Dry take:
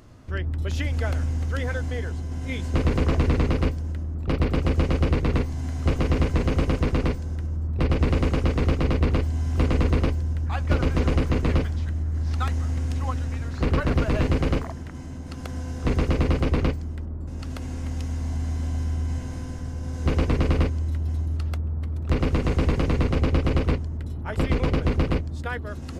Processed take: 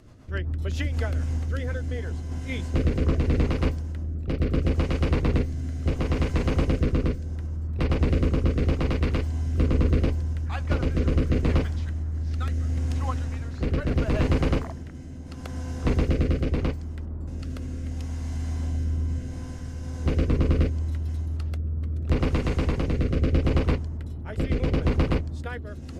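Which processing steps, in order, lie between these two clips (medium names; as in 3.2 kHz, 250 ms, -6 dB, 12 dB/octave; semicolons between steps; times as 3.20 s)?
rotary cabinet horn 7.5 Hz, later 0.75 Hz, at 0.53 s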